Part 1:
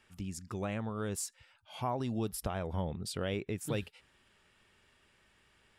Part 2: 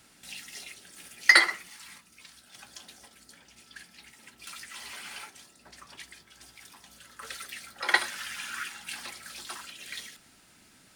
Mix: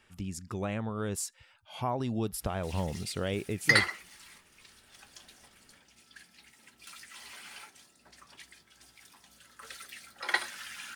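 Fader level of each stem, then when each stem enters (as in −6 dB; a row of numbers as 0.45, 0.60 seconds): +2.5, −5.5 decibels; 0.00, 2.40 seconds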